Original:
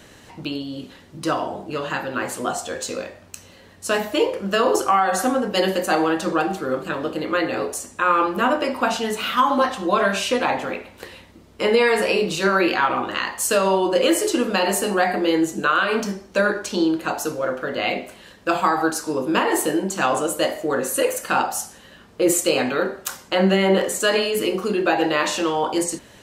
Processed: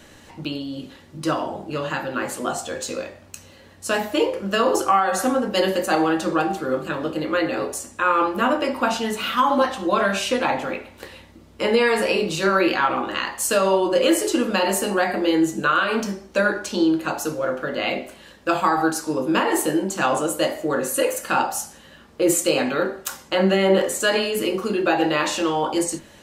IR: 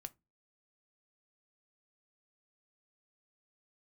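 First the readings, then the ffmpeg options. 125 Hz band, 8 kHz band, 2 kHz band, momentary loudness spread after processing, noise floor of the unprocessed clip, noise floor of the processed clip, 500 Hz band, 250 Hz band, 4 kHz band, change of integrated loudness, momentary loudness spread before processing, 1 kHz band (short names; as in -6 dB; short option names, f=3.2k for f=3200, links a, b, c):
-0.5 dB, -0.5 dB, -1.0 dB, 11 LU, -48 dBFS, -48 dBFS, -0.5 dB, +0.5 dB, -1.0 dB, -0.5 dB, 11 LU, -0.5 dB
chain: -filter_complex "[1:a]atrim=start_sample=2205,asetrate=48510,aresample=44100[a];[0:a][a]afir=irnorm=-1:irlink=0,volume=5.5dB"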